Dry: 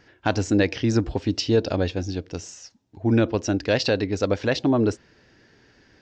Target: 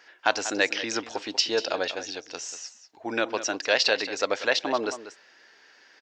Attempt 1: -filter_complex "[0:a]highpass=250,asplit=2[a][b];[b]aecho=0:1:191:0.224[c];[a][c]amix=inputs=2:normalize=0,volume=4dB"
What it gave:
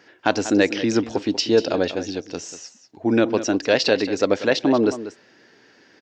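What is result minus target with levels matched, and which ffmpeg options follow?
250 Hz band +9.0 dB
-filter_complex "[0:a]highpass=770,asplit=2[a][b];[b]aecho=0:1:191:0.224[c];[a][c]amix=inputs=2:normalize=0,volume=4dB"

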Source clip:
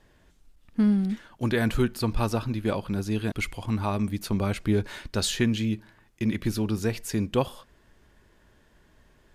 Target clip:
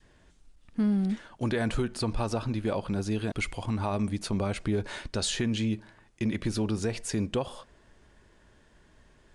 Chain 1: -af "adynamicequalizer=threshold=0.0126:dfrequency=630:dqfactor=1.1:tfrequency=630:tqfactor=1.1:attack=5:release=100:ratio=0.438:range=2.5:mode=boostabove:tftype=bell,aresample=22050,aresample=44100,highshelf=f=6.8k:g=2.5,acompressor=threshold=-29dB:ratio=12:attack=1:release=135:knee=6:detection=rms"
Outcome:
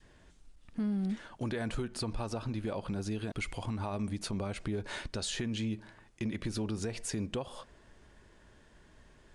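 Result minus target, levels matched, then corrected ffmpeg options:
compressor: peak gain reduction +7.5 dB
-af "adynamicequalizer=threshold=0.0126:dfrequency=630:dqfactor=1.1:tfrequency=630:tqfactor=1.1:attack=5:release=100:ratio=0.438:range=2.5:mode=boostabove:tftype=bell,aresample=22050,aresample=44100,highshelf=f=6.8k:g=2.5,acompressor=threshold=-21dB:ratio=12:attack=1:release=135:knee=6:detection=rms"

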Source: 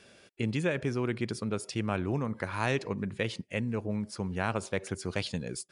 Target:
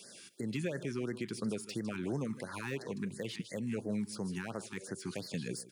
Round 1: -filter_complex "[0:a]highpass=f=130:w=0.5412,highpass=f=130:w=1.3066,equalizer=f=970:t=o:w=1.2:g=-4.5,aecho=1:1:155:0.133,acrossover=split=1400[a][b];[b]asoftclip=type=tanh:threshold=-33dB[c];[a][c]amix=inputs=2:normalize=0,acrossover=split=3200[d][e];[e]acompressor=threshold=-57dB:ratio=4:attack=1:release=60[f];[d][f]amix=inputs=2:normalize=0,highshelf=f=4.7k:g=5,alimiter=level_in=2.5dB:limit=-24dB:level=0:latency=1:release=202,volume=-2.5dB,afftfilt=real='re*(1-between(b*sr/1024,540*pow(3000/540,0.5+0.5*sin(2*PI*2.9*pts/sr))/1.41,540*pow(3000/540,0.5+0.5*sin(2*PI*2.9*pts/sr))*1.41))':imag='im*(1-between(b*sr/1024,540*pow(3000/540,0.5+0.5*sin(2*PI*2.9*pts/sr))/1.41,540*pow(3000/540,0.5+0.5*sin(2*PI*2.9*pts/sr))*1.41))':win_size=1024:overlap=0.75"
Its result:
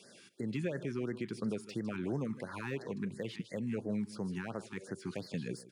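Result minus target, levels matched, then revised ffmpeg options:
8000 Hz band -8.5 dB
-filter_complex "[0:a]highpass=f=130:w=0.5412,highpass=f=130:w=1.3066,equalizer=f=970:t=o:w=1.2:g=-4.5,aecho=1:1:155:0.133,acrossover=split=1400[a][b];[b]asoftclip=type=tanh:threshold=-33dB[c];[a][c]amix=inputs=2:normalize=0,acrossover=split=3200[d][e];[e]acompressor=threshold=-57dB:ratio=4:attack=1:release=60[f];[d][f]amix=inputs=2:normalize=0,highshelf=f=4.7k:g=17,alimiter=level_in=2.5dB:limit=-24dB:level=0:latency=1:release=202,volume=-2.5dB,afftfilt=real='re*(1-between(b*sr/1024,540*pow(3000/540,0.5+0.5*sin(2*PI*2.9*pts/sr))/1.41,540*pow(3000/540,0.5+0.5*sin(2*PI*2.9*pts/sr))*1.41))':imag='im*(1-between(b*sr/1024,540*pow(3000/540,0.5+0.5*sin(2*PI*2.9*pts/sr))/1.41,540*pow(3000/540,0.5+0.5*sin(2*PI*2.9*pts/sr))*1.41))':win_size=1024:overlap=0.75"

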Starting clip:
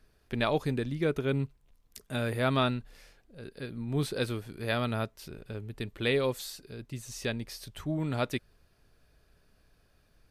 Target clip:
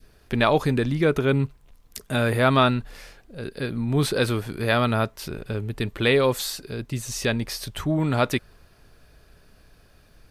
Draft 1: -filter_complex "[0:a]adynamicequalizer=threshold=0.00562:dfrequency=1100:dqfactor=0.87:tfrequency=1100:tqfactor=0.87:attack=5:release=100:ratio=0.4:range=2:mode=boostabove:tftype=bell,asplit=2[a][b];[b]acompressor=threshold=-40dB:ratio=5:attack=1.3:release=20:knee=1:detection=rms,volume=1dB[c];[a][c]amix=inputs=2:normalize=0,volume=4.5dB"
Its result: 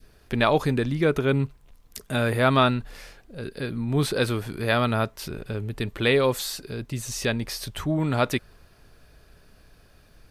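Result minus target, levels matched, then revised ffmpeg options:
compressor: peak gain reduction +5 dB
-filter_complex "[0:a]adynamicequalizer=threshold=0.00562:dfrequency=1100:dqfactor=0.87:tfrequency=1100:tqfactor=0.87:attack=5:release=100:ratio=0.4:range=2:mode=boostabove:tftype=bell,asplit=2[a][b];[b]acompressor=threshold=-33.5dB:ratio=5:attack=1.3:release=20:knee=1:detection=rms,volume=1dB[c];[a][c]amix=inputs=2:normalize=0,volume=4.5dB"

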